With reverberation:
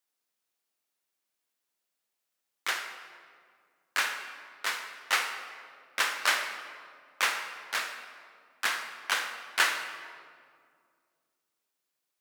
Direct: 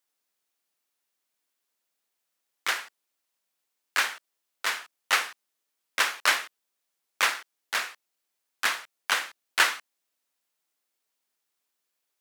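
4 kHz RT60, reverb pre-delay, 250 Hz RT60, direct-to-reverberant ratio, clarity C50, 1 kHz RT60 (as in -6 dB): 1.3 s, 17 ms, 2.7 s, 5.5 dB, 7.0 dB, 1.9 s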